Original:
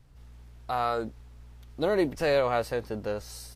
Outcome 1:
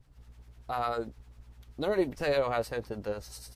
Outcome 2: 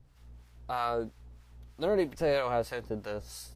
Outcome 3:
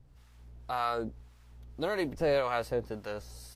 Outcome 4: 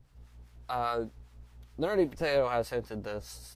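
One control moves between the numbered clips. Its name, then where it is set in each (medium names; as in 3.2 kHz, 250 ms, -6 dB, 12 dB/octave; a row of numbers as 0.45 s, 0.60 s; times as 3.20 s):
harmonic tremolo, rate: 10 Hz, 3.1 Hz, 1.8 Hz, 5 Hz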